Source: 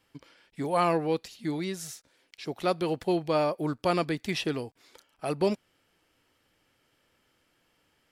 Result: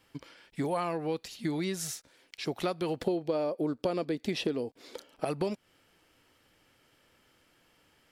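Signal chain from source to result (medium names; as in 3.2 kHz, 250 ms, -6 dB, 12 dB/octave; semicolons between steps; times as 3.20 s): 3.00–5.25 s: graphic EQ 250/500/4000 Hz +8/+10/+4 dB; compression 8:1, threshold -32 dBFS, peak gain reduction 19 dB; trim +4 dB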